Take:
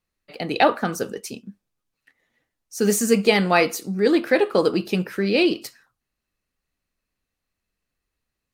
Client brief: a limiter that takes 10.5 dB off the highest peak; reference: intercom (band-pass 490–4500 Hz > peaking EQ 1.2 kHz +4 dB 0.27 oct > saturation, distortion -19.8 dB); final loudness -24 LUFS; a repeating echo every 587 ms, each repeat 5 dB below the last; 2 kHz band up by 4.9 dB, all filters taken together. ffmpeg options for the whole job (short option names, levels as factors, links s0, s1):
-af "equalizer=f=2000:t=o:g=6,alimiter=limit=0.266:level=0:latency=1,highpass=490,lowpass=4500,equalizer=f=1200:t=o:w=0.27:g=4,aecho=1:1:587|1174|1761|2348|2935|3522|4109:0.562|0.315|0.176|0.0988|0.0553|0.031|0.0173,asoftclip=threshold=0.188,volume=1.5"